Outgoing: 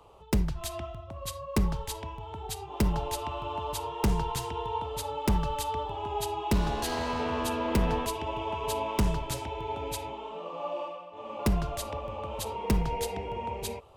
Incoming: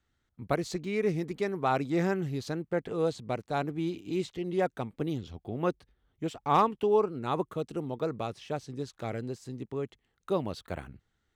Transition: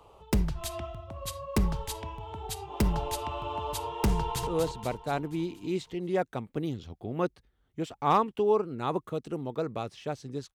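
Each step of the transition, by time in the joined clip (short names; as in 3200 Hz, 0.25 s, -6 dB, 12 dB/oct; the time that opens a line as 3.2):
outgoing
4.18–4.47 echo throw 0.24 s, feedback 55%, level -5.5 dB
4.47 switch to incoming from 2.91 s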